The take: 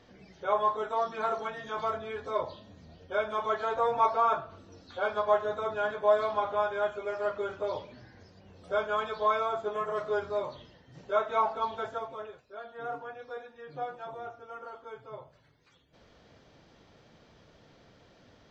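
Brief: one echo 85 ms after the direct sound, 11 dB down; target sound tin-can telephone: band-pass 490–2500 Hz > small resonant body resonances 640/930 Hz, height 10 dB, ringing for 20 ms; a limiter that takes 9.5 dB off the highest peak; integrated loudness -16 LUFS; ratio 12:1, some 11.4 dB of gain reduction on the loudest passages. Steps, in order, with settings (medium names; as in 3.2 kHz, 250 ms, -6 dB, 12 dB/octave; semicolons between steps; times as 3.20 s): compression 12:1, threshold -30 dBFS; peak limiter -31 dBFS; band-pass 490–2500 Hz; delay 85 ms -11 dB; small resonant body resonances 640/930 Hz, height 10 dB, ringing for 20 ms; trim +19.5 dB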